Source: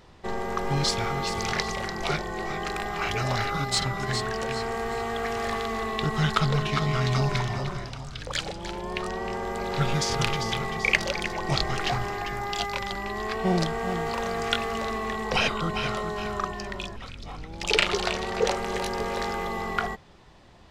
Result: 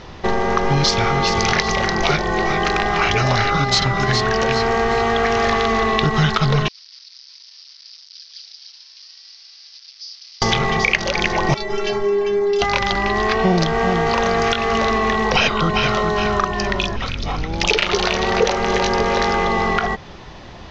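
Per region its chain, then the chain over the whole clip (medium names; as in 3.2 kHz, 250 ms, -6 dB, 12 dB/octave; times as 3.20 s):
6.68–10.42 s: one-bit comparator + Butterworth band-pass 5.1 kHz, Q 4.2 + distance through air 330 m
11.54–12.62 s: peaking EQ 390 Hz +10.5 dB 0.55 oct + inharmonic resonator 200 Hz, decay 0.26 s, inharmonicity 0.008
whole clip: elliptic low-pass 6.3 kHz, stop band 50 dB; compression 2.5:1, threshold -33 dBFS; loudness maximiser +17.5 dB; trim -1 dB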